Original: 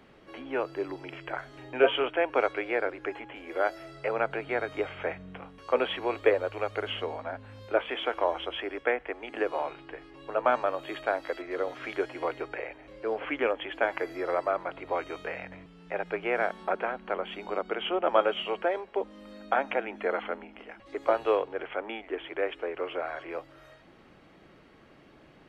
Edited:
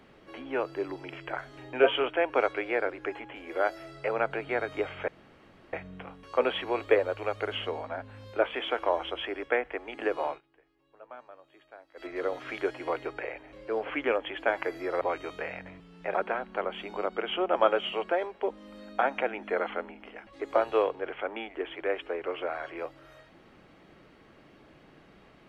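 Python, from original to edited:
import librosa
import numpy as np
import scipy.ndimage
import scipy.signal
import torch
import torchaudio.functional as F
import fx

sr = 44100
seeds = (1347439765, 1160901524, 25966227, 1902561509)

y = fx.edit(x, sr, fx.insert_room_tone(at_s=5.08, length_s=0.65),
    fx.fade_down_up(start_s=9.64, length_s=1.78, db=-22.0, fade_s=0.12),
    fx.cut(start_s=14.36, length_s=0.51),
    fx.cut(start_s=16.0, length_s=0.67), tone=tone)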